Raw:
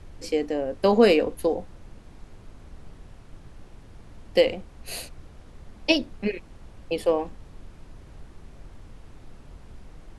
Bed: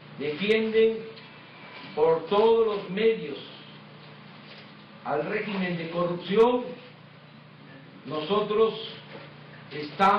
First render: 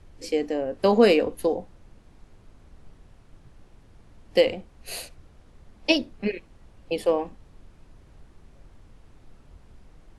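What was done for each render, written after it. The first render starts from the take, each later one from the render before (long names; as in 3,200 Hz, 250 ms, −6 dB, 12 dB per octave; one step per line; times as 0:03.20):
noise reduction from a noise print 6 dB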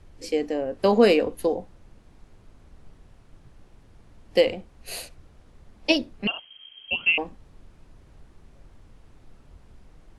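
0:06.27–0:07.18: voice inversion scrambler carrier 3,200 Hz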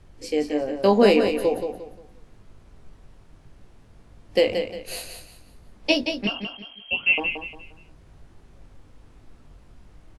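double-tracking delay 20 ms −7.5 dB
repeating echo 176 ms, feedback 31%, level −7 dB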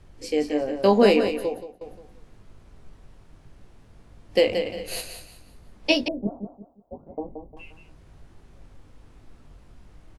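0:00.81–0:01.81: fade out equal-power, to −21.5 dB
0:04.61–0:05.01: double-tracking delay 48 ms −2.5 dB
0:06.08–0:07.57: inverse Chebyshev band-stop filter 2,500–5,500 Hz, stop band 80 dB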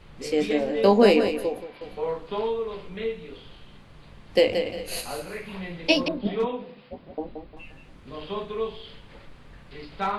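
mix in bed −7 dB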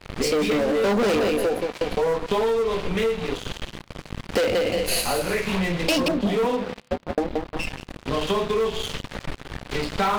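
leveller curve on the samples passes 5
downward compressor, threshold −21 dBFS, peak gain reduction 12 dB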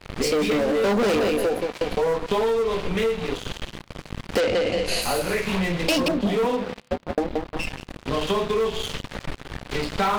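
0:04.40–0:05.02: low-pass filter 7,200 Hz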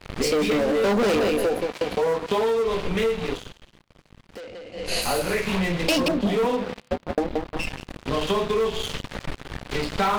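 0:01.72–0:02.66: high-pass filter 110 Hz 6 dB per octave
0:03.30–0:04.97: duck −17.5 dB, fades 0.24 s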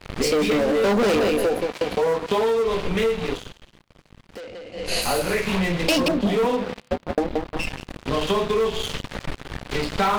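level +1.5 dB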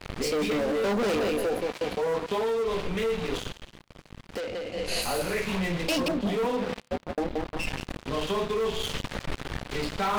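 reversed playback
downward compressor, threshold −29 dBFS, peak gain reduction 12.5 dB
reversed playback
leveller curve on the samples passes 1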